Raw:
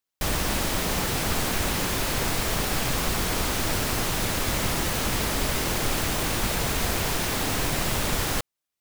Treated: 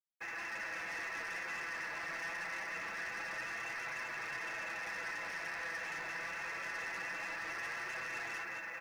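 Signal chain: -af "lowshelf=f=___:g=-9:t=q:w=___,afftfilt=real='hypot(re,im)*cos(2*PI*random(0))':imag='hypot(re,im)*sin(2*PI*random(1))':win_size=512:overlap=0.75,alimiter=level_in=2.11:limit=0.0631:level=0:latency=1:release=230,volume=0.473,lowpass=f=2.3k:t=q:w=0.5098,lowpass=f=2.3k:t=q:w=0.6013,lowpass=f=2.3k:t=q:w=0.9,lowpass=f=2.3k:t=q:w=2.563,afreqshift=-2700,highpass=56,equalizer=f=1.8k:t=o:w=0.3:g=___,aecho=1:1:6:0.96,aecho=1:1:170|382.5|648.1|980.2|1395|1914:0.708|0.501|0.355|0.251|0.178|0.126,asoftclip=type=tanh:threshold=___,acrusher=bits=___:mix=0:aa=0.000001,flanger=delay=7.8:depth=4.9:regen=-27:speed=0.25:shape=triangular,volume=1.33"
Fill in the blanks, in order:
540, 1.5, 6, 0.0141, 10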